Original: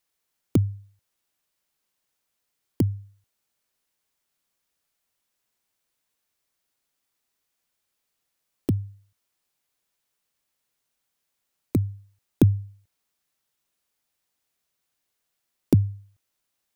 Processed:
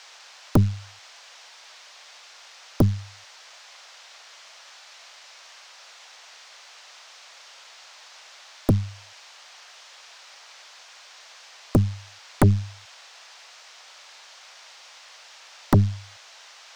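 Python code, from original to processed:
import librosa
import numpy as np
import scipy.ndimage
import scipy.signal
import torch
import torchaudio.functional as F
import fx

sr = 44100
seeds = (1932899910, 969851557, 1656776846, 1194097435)

y = fx.dmg_noise_band(x, sr, seeds[0], low_hz=590.0, high_hz=6100.0, level_db=-53.0)
y = fx.cheby_harmonics(y, sr, harmonics=(3, 5, 8), levels_db=(-13, -11, -13), full_scale_db=-5.0)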